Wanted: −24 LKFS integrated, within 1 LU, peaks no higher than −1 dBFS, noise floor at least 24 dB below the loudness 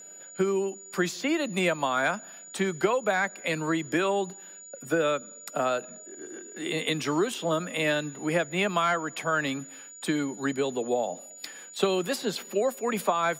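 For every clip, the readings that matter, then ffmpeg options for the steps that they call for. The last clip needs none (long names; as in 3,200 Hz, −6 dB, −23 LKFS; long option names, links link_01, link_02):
interfering tone 6,900 Hz; level of the tone −44 dBFS; integrated loudness −28.0 LKFS; sample peak −9.5 dBFS; target loudness −24.0 LKFS
→ -af "bandreject=frequency=6900:width=30"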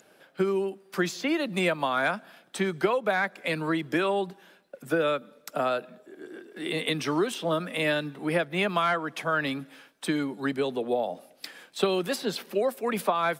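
interfering tone none found; integrated loudness −28.5 LKFS; sample peak −9.5 dBFS; target loudness −24.0 LKFS
→ -af "volume=4.5dB"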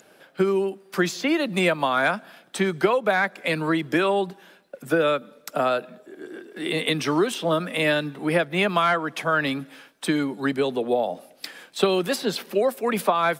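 integrated loudness −24.0 LKFS; sample peak −5.0 dBFS; background noise floor −55 dBFS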